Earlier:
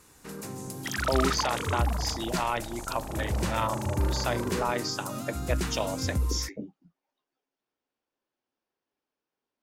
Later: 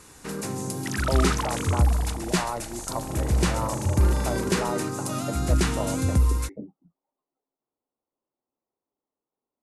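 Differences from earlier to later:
speech: add Savitzky-Golay filter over 65 samples; first sound +7.5 dB; master: add brick-wall FIR low-pass 12 kHz

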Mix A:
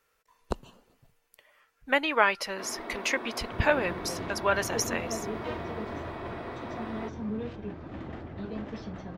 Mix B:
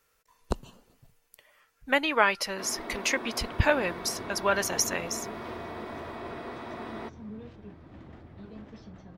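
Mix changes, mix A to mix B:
second sound -10.5 dB; master: add tone controls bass +4 dB, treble +5 dB

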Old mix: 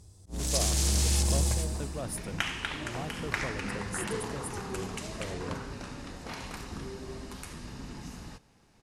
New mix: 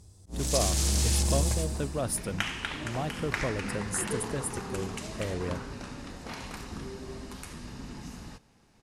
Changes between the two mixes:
speech +6.5 dB; master: add peaking EQ 230 Hz +2.5 dB 0.28 oct

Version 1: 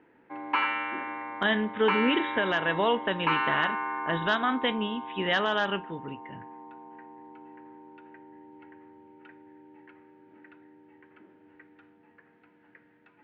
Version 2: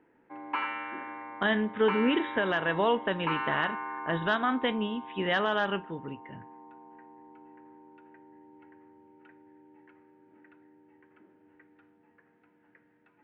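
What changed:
background -4.0 dB; master: add treble shelf 3.5 kHz -9.5 dB

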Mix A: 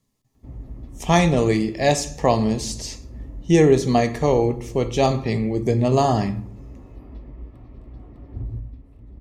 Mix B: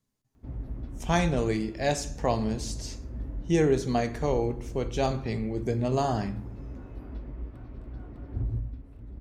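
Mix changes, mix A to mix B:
speech -8.5 dB; master: remove Butterworth band-stop 1.5 kHz, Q 5.5

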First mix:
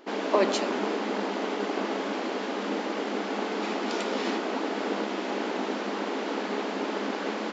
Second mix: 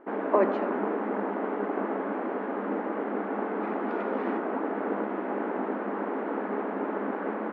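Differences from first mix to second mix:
speech: remove distance through air 130 m; master: add low-pass 1.7 kHz 24 dB/octave

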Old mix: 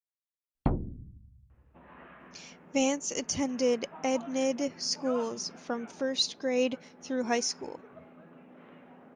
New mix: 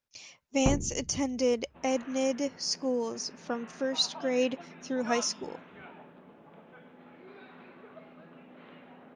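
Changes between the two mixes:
speech: entry -2.20 s; second sound: remove distance through air 370 m

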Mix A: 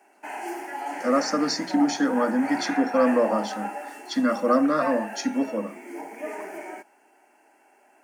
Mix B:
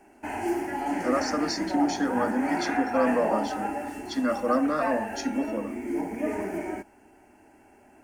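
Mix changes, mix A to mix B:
speech -4.0 dB; background: remove high-pass 540 Hz 12 dB/octave

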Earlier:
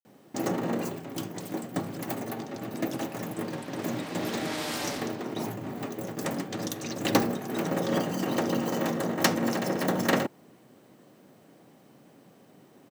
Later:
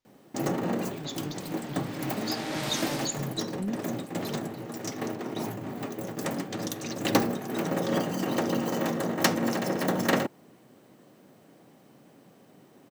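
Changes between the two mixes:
speech: unmuted; second sound: entry -1.95 s

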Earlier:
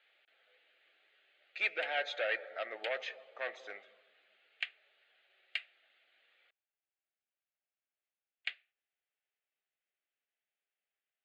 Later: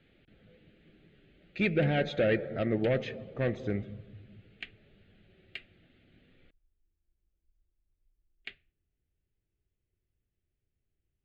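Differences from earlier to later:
background -5.0 dB; master: remove high-pass 710 Hz 24 dB/octave

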